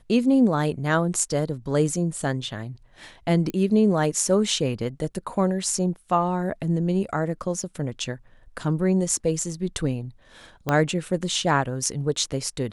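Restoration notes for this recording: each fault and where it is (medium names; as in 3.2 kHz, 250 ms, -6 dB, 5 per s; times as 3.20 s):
3.50 s: pop -17 dBFS
5.15 s: dropout 3.1 ms
10.69 s: pop -10 dBFS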